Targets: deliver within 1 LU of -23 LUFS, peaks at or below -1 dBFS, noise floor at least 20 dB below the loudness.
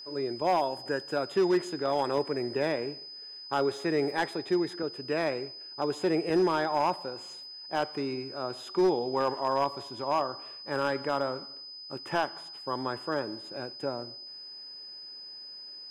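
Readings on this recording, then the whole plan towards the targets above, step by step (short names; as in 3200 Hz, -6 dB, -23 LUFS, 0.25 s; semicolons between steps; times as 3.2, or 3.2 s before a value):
clipped 0.5%; flat tops at -19.0 dBFS; steady tone 5000 Hz; tone level -42 dBFS; loudness -30.5 LUFS; peak -19.0 dBFS; loudness target -23.0 LUFS
-> clip repair -19 dBFS; notch 5000 Hz, Q 30; gain +7.5 dB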